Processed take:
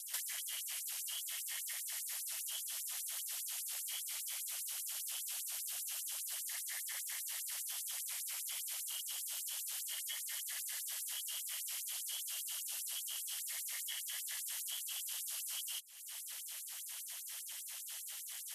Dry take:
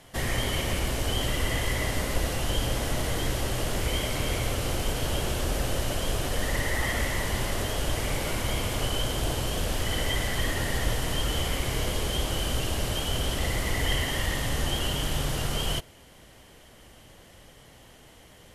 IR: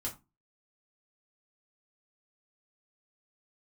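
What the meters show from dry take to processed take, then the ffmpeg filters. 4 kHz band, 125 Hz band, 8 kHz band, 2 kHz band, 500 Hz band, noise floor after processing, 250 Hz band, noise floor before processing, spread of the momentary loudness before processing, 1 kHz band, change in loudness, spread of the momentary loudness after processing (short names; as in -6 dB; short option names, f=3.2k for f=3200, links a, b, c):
-12.5 dB, under -40 dB, -3.5 dB, -18.0 dB, under -35 dB, -48 dBFS, under -40 dB, -52 dBFS, 2 LU, -26.0 dB, -11.0 dB, 4 LU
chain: -filter_complex "[0:a]aderivative,aeval=exprs='val(0)*sin(2*PI*140*n/s)':c=same,acrossover=split=400[a][b];[a]acrusher=bits=4:mix=0:aa=0.000001[c];[b]acompressor=threshold=-55dB:ratio=12[d];[c][d]amix=inputs=2:normalize=0,afftfilt=real='re*gte(b*sr/1024,480*pow(7400/480,0.5+0.5*sin(2*PI*5*pts/sr)))':imag='im*gte(b*sr/1024,480*pow(7400/480,0.5+0.5*sin(2*PI*5*pts/sr)))':win_size=1024:overlap=0.75,volume=16.5dB"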